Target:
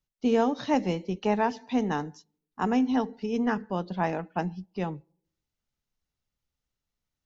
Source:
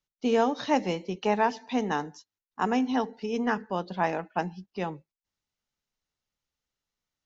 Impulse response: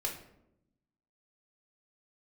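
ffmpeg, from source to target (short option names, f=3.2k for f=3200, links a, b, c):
-filter_complex "[0:a]lowshelf=f=250:g=10.5,asplit=2[a][b];[1:a]atrim=start_sample=2205,asetrate=70560,aresample=44100[c];[b][c]afir=irnorm=-1:irlink=0,volume=-23.5dB[d];[a][d]amix=inputs=2:normalize=0,volume=-3dB"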